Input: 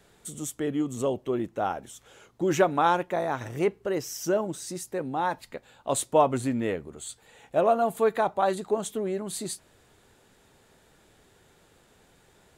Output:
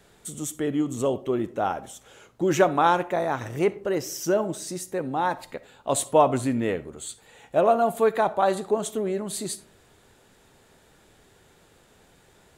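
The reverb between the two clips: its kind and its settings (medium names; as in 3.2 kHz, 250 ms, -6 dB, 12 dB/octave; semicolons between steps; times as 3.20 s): algorithmic reverb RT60 0.51 s, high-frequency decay 0.4×, pre-delay 15 ms, DRR 16 dB; trim +2.5 dB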